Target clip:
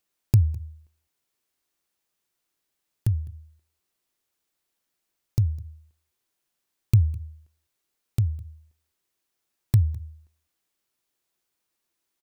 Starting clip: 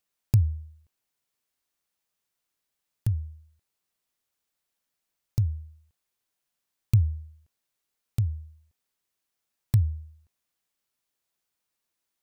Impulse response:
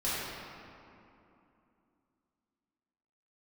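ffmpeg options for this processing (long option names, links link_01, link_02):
-af "equalizer=frequency=350:width=3.7:gain=6,aecho=1:1:206:0.0708,volume=2.5dB"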